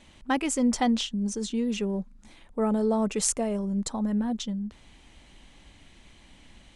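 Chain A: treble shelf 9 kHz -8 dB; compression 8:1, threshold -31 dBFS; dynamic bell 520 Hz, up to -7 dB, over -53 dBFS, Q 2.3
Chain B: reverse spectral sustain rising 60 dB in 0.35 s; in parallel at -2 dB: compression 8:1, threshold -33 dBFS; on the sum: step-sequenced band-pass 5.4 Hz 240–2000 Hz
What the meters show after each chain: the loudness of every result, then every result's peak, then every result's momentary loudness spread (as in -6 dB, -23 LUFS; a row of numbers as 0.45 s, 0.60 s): -36.0 LUFS, -34.5 LUFS; -17.5 dBFS, -18.5 dBFS; 20 LU, 14 LU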